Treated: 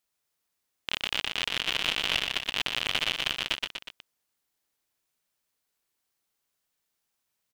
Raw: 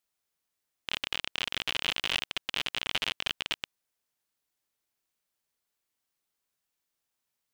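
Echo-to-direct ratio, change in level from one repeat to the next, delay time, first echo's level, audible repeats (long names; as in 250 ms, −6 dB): −4.5 dB, −4.5 dB, 121 ms, −6.0 dB, 3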